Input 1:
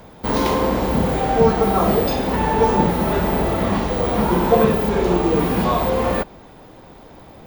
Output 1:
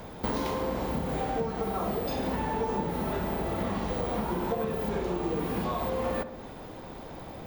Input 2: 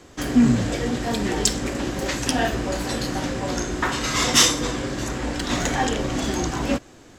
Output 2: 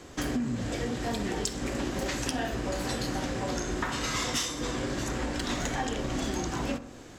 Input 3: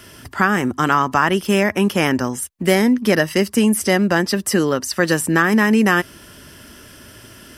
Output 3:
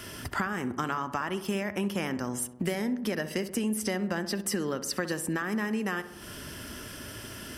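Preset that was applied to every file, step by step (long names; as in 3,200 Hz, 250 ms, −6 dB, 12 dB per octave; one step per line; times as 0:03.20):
downward compressor 8 to 1, threshold −28 dBFS
on a send: feedback echo with a low-pass in the loop 65 ms, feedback 68%, low-pass 1,700 Hz, level −12 dB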